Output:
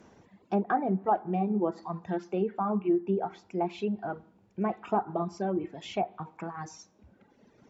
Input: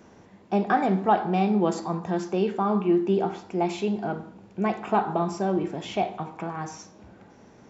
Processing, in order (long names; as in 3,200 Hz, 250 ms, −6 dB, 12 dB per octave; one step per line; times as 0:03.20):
reverb reduction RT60 1.9 s
treble cut that deepens with the level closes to 1,100 Hz, closed at −20 dBFS
level −3.5 dB